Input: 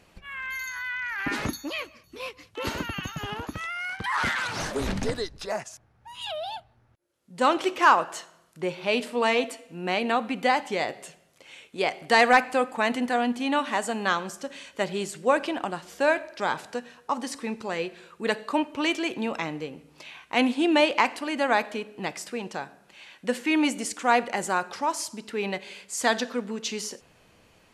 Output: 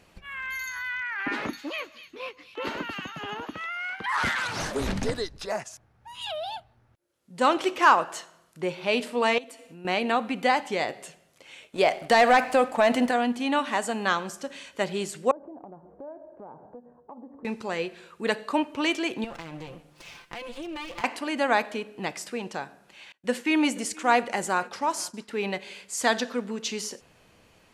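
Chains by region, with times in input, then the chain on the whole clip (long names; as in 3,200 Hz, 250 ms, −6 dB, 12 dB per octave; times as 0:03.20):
0:01.02–0:04.09: three-way crossover with the lows and the highs turned down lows −17 dB, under 190 Hz, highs −14 dB, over 3,900 Hz + delay with a high-pass on its return 250 ms, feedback 32%, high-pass 4,200 Hz, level −4 dB
0:09.38–0:09.85: high-shelf EQ 8,000 Hz +4.5 dB + downward compressor 3 to 1, threshold −44 dBFS
0:11.62–0:13.11: parametric band 630 Hz +10 dB 0.3 octaves + leveller curve on the samples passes 1 + downward compressor 2 to 1, threshold −17 dBFS
0:15.31–0:17.45: inverse Chebyshev low-pass filter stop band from 3,700 Hz, stop band 70 dB + downward compressor 3 to 1, threshold −44 dBFS
0:19.24–0:21.04: lower of the sound and its delayed copy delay 5.8 ms + downward compressor 5 to 1, threshold −35 dBFS
0:23.12–0:25.31: downward expander −39 dBFS + single-tap delay 477 ms −23.5 dB
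whole clip: no processing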